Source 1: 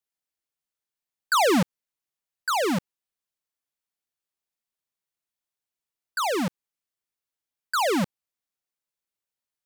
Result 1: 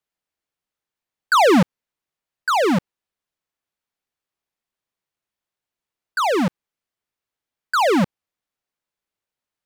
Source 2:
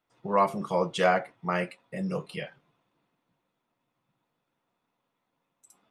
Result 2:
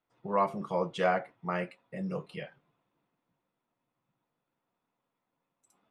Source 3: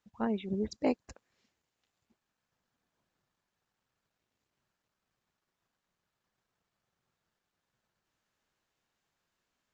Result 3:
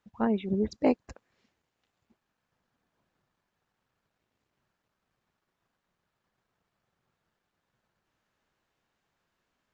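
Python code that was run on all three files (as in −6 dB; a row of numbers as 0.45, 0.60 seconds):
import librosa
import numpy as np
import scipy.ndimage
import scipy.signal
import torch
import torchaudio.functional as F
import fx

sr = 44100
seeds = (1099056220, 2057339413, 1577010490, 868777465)

y = fx.high_shelf(x, sr, hz=4500.0, db=-10.5)
y = y * 10.0 ** (-12 / 20.0) / np.max(np.abs(y))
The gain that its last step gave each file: +7.0, −4.0, +5.5 decibels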